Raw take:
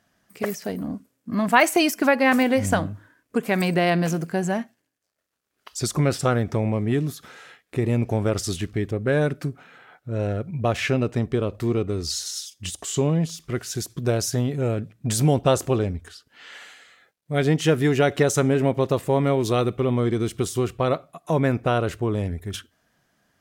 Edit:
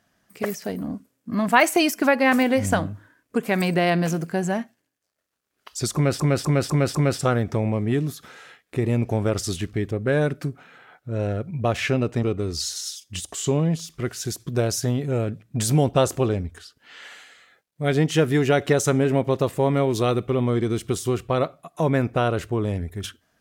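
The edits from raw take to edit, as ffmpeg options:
-filter_complex "[0:a]asplit=6[s0][s1][s2][s3][s4][s5];[s0]atrim=end=6.202[s6];[s1]atrim=start=5.948:end=6.202[s7];[s2]atrim=start=5.948:end=6.202[s8];[s3]atrim=start=5.948:end=6.202[s9];[s4]atrim=start=5.948:end=11.232[s10];[s5]atrim=start=11.728[s11];[s6][s7]acrossfade=d=0.004:c1=hsin:c2=hsin[s12];[s12][s8]acrossfade=d=0.004:c1=hsin:c2=hsin[s13];[s13][s9]acrossfade=d=0.004:c1=hsin:c2=hsin[s14];[s14][s10]acrossfade=d=0.004:c1=hsin:c2=hsin[s15];[s15][s11]acrossfade=d=0.004:c1=hsin:c2=hsin"

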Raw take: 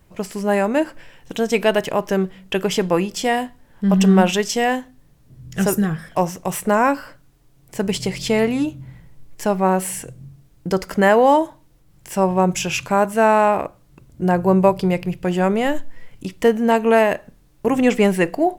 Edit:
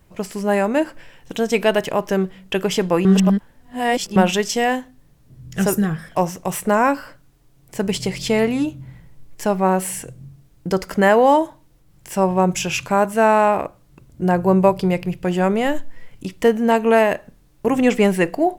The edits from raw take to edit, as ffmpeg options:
-filter_complex "[0:a]asplit=3[s0][s1][s2];[s0]atrim=end=3.052[s3];[s1]atrim=start=3.048:end=4.162,asetpts=PTS-STARTPTS,areverse[s4];[s2]atrim=start=4.158[s5];[s3][s4]acrossfade=d=0.004:c1=hsin:c2=hsin[s6];[s6][s5]acrossfade=d=0.004:c1=hsin:c2=hsin"

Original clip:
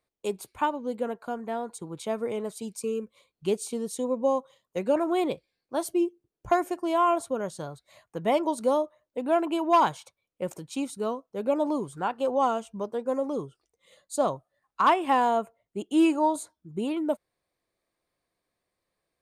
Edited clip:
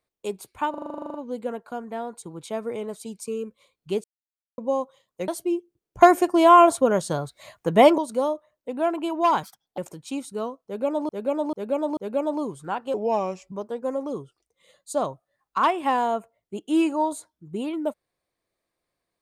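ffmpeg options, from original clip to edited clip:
-filter_complex "[0:a]asplit=24[s0][s1][s2][s3][s4][s5][s6][s7][s8][s9][s10][s11][s12][s13][s14][s15][s16][s17][s18][s19][s20][s21][s22][s23];[s0]atrim=end=0.742[s24];[s1]atrim=start=0.698:end=0.742[s25];[s2]atrim=start=0.698:end=0.742[s26];[s3]atrim=start=0.698:end=0.742[s27];[s4]atrim=start=0.698:end=0.742[s28];[s5]atrim=start=0.698:end=0.742[s29];[s6]atrim=start=0.698:end=0.742[s30];[s7]atrim=start=0.698:end=0.742[s31];[s8]atrim=start=0.698:end=0.742[s32];[s9]atrim=start=0.698:end=0.742[s33];[s10]atrim=start=0.698:end=0.742[s34];[s11]atrim=start=0.698:end=3.6,asetpts=PTS-STARTPTS,afade=t=out:st=2.898:d=0.004:c=hsin[s35];[s12]atrim=start=3.6:end=4.14,asetpts=PTS-STARTPTS,volume=0[s36];[s13]atrim=start=4.14:end=4.842,asetpts=PTS-STARTPTS,afade=t=in:d=0.004:c=hsin[s37];[s14]atrim=start=5.768:end=6.502[s38];[s15]atrim=start=6.498:end=8.472,asetpts=PTS-STARTPTS,volume=3.16[s39];[s16]atrim=start=8.468:end=9.924[s40];[s17]atrim=start=9.92:end=10.43,asetpts=PTS-STARTPTS,asetrate=64386,aresample=44100[s41];[s18]atrim=start=10.426:end=11.742[s42];[s19]atrim=start=11.298:end=11.742[s43];[s20]atrim=start=11.298:end=11.742[s44];[s21]atrim=start=11.298:end=12.274[s45];[s22]atrim=start=12.27:end=12.75,asetpts=PTS-STARTPTS,asetrate=36603,aresample=44100[s46];[s23]atrim=start=12.746[s47];[s24][s25]acrossfade=d=0.004:c1=hsin:c2=hsin[s48];[s48][s26]acrossfade=d=0.004:c1=hsin:c2=hsin[s49];[s49][s27]acrossfade=d=0.004:c1=hsin:c2=hsin[s50];[s50][s28]acrossfade=d=0.004:c1=hsin:c2=hsin[s51];[s51][s29]acrossfade=d=0.004:c1=hsin:c2=hsin[s52];[s52][s30]acrossfade=d=0.004:c1=hsin:c2=hsin[s53];[s53][s31]acrossfade=d=0.004:c1=hsin:c2=hsin[s54];[s54][s32]acrossfade=d=0.004:c1=hsin:c2=hsin[s55];[s55][s33]acrossfade=d=0.004:c1=hsin:c2=hsin[s56];[s56][s34]acrossfade=d=0.004:c1=hsin:c2=hsin[s57];[s35][s36][s37]concat=n=3:v=0:a=1[s58];[s57][s58]acrossfade=d=0.004:c1=hsin:c2=hsin[s59];[s59][s38]acrossfade=d=0.004:c1=hsin:c2=hsin[s60];[s60][s39]acrossfade=d=0.004:c1=hsin:c2=hsin[s61];[s61][s40]acrossfade=d=0.004:c1=hsin:c2=hsin[s62];[s62][s41]acrossfade=d=0.004:c1=hsin:c2=hsin[s63];[s63][s42]acrossfade=d=0.004:c1=hsin:c2=hsin[s64];[s64][s43]acrossfade=d=0.004:c1=hsin:c2=hsin[s65];[s65][s44]acrossfade=d=0.004:c1=hsin:c2=hsin[s66];[s66][s45]acrossfade=d=0.004:c1=hsin:c2=hsin[s67];[s67][s46]acrossfade=d=0.004:c1=hsin:c2=hsin[s68];[s68][s47]acrossfade=d=0.004:c1=hsin:c2=hsin"

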